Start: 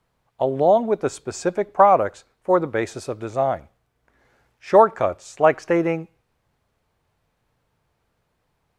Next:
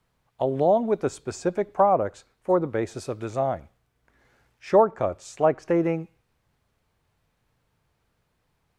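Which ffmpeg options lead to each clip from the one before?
-filter_complex "[0:a]equalizer=f=650:t=o:w=2:g=-3.5,acrossover=split=980[s0][s1];[s1]acompressor=threshold=0.0126:ratio=6[s2];[s0][s2]amix=inputs=2:normalize=0"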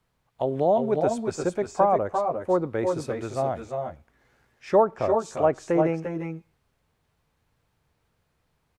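-af "aecho=1:1:346|359:0.398|0.447,volume=0.841"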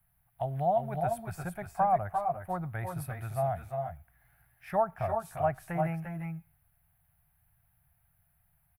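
-af "firequalizer=gain_entry='entry(120,0);entry(170,-4);entry(250,-22);entry(490,-26);entry(700,-2);entry(1000,-12);entry(1600,-4);entry(3500,-14);entry(6900,-21);entry(11000,13)':delay=0.05:min_phase=1,volume=1.26"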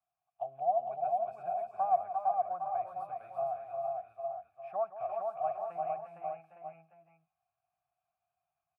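-filter_complex "[0:a]asplit=3[s0][s1][s2];[s0]bandpass=f=730:t=q:w=8,volume=1[s3];[s1]bandpass=f=1090:t=q:w=8,volume=0.501[s4];[s2]bandpass=f=2440:t=q:w=8,volume=0.355[s5];[s3][s4][s5]amix=inputs=3:normalize=0,aecho=1:1:170|458|860:0.211|0.668|0.376"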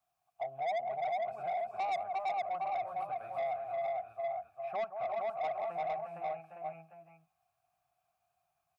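-filter_complex "[0:a]asplit=2[s0][s1];[s1]acompressor=threshold=0.01:ratio=6,volume=1.12[s2];[s0][s2]amix=inputs=2:normalize=0,asoftclip=type=tanh:threshold=0.0299"

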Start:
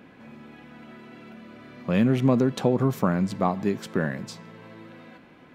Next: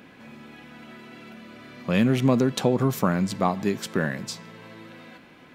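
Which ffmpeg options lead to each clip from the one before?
-af "highshelf=f=2300:g=8.5"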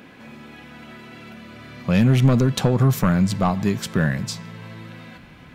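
-af "aeval=exprs='0.473*sin(PI/2*1.58*val(0)/0.473)':c=same,asubboost=boost=7:cutoff=130,volume=0.631"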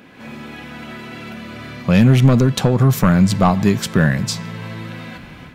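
-af "dynaudnorm=f=130:g=3:m=2.51"

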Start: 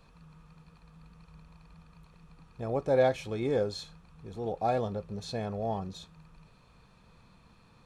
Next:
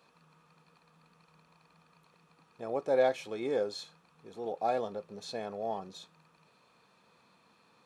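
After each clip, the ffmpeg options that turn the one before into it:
-af "highpass=290,volume=0.841"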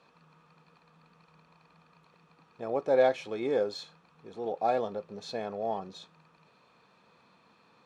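-af "adynamicsmooth=sensitivity=3.5:basefreq=6600,volume=1.41"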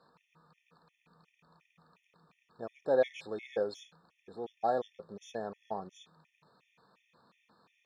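-af "afftfilt=real='re*gt(sin(2*PI*2.8*pts/sr)*(1-2*mod(floor(b*sr/1024/1800),2)),0)':imag='im*gt(sin(2*PI*2.8*pts/sr)*(1-2*mod(floor(b*sr/1024/1800),2)),0)':win_size=1024:overlap=0.75,volume=0.75"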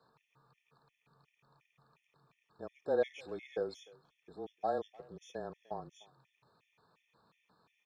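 -filter_complex "[0:a]afreqshift=-25,asplit=2[s0][s1];[s1]adelay=300,highpass=300,lowpass=3400,asoftclip=type=hard:threshold=0.0596,volume=0.0708[s2];[s0][s2]amix=inputs=2:normalize=0,volume=0.631"

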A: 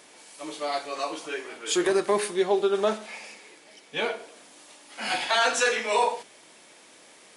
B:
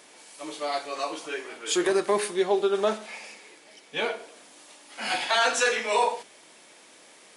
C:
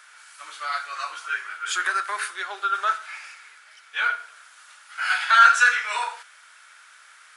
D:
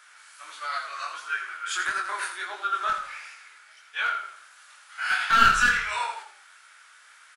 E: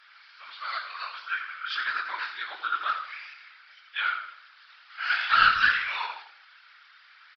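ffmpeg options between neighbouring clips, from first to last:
-af "lowshelf=f=110:g=-6"
-af "highpass=f=1400:t=q:w=8.1,volume=0.794"
-filter_complex "[0:a]aeval=exprs='clip(val(0),-1,0.168)':c=same,flanger=delay=18.5:depth=6.8:speed=1.5,asplit=5[s0][s1][s2][s3][s4];[s1]adelay=83,afreqshift=-33,volume=0.355[s5];[s2]adelay=166,afreqshift=-66,volume=0.124[s6];[s3]adelay=249,afreqshift=-99,volume=0.0437[s7];[s4]adelay=332,afreqshift=-132,volume=0.0151[s8];[s0][s5][s6][s7][s8]amix=inputs=5:normalize=0"
-af "tiltshelf=f=800:g=-8,aresample=11025,aresample=44100,afftfilt=real='hypot(re,im)*cos(2*PI*random(0))':imag='hypot(re,im)*sin(2*PI*random(1))':win_size=512:overlap=0.75"

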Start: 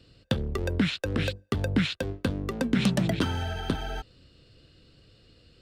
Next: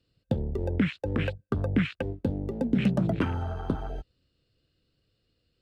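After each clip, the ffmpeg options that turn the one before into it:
-af "afwtdn=0.0224"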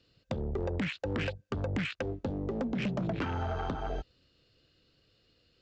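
-af "lowshelf=f=280:g=-7.5,acompressor=threshold=0.0158:ratio=3,aresample=16000,asoftclip=type=tanh:threshold=0.0178,aresample=44100,volume=2.66"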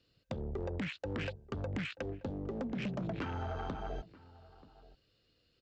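-filter_complex "[0:a]asplit=2[s0][s1];[s1]adelay=932.9,volume=0.112,highshelf=f=4000:g=-21[s2];[s0][s2]amix=inputs=2:normalize=0,volume=0.562"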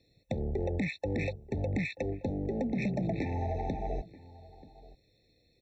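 -af "afftfilt=real='re*eq(mod(floor(b*sr/1024/880),2),0)':imag='im*eq(mod(floor(b*sr/1024/880),2),0)':win_size=1024:overlap=0.75,volume=2"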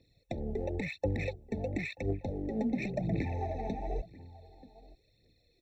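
-af "aphaser=in_gain=1:out_gain=1:delay=4.8:decay=0.56:speed=0.95:type=triangular,volume=0.708"

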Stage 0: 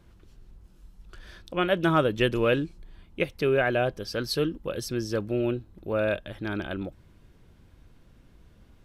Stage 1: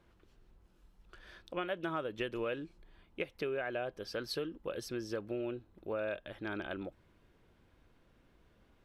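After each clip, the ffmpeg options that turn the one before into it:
-af "bass=f=250:g=-9,treble=f=4000:g=-7,acompressor=threshold=0.0355:ratio=6,volume=0.596"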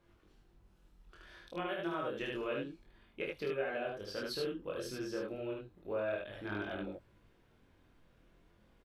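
-filter_complex "[0:a]flanger=delay=20:depth=3.4:speed=0.29,asplit=2[s0][s1];[s1]aecho=0:1:29.15|75.8:0.562|0.794[s2];[s0][s2]amix=inputs=2:normalize=0"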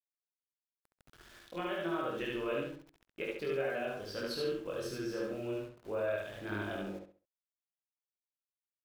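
-filter_complex "[0:a]aeval=exprs='val(0)*gte(abs(val(0)),0.00211)':c=same,asplit=2[s0][s1];[s1]adelay=67,lowpass=f=4300:p=1,volume=0.631,asplit=2[s2][s3];[s3]adelay=67,lowpass=f=4300:p=1,volume=0.3,asplit=2[s4][s5];[s5]adelay=67,lowpass=f=4300:p=1,volume=0.3,asplit=2[s6][s7];[s7]adelay=67,lowpass=f=4300:p=1,volume=0.3[s8];[s0][s2][s4][s6][s8]amix=inputs=5:normalize=0"

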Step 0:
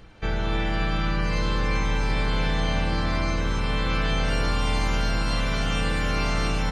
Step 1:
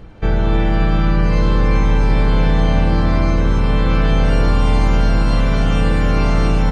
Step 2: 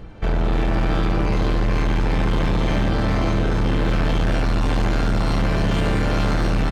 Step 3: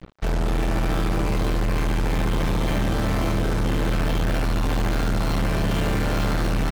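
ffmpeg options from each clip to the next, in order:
-af "tiltshelf=f=1200:g=6,volume=1.78"
-af "aecho=1:1:451|902|1353|1804|2255|2706|3157:0.447|0.25|0.14|0.0784|0.0439|0.0246|0.0138,volume=6.68,asoftclip=hard,volume=0.15"
-af "acrusher=bits=4:mix=0:aa=0.5,volume=0.794"

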